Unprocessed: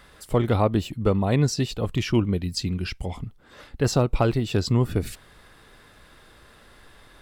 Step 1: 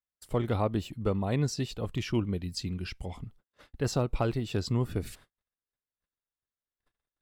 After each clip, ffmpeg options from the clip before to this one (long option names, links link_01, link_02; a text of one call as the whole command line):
ffmpeg -i in.wav -af "agate=range=-44dB:threshold=-45dB:ratio=16:detection=peak,volume=-7.5dB" out.wav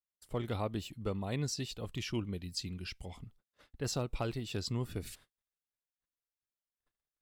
ffmpeg -i in.wav -af "adynamicequalizer=threshold=0.00282:dfrequency=2100:dqfactor=0.7:tfrequency=2100:tqfactor=0.7:attack=5:release=100:ratio=0.375:range=3.5:mode=boostabove:tftype=highshelf,volume=-7.5dB" out.wav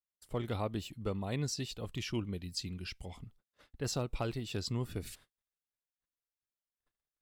ffmpeg -i in.wav -af anull out.wav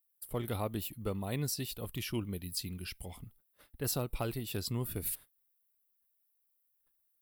ffmpeg -i in.wav -af "aexciter=amount=7.8:drive=6.4:freq=9500" out.wav